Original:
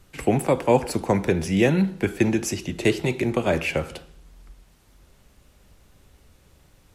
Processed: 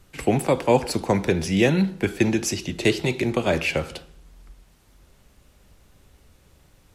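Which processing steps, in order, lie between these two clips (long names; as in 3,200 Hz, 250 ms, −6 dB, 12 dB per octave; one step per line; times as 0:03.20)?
dynamic equaliser 4,300 Hz, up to +6 dB, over −46 dBFS, Q 1.2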